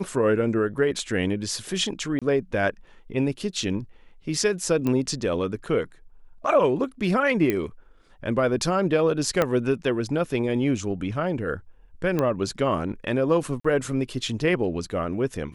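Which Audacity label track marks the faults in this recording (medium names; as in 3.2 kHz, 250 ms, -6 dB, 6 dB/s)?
2.190000	2.220000	dropout 26 ms
4.870000	4.870000	pop -14 dBFS
7.500000	7.500000	pop -11 dBFS
9.420000	9.420000	pop -8 dBFS
12.190000	12.190000	pop -12 dBFS
13.600000	13.640000	dropout 45 ms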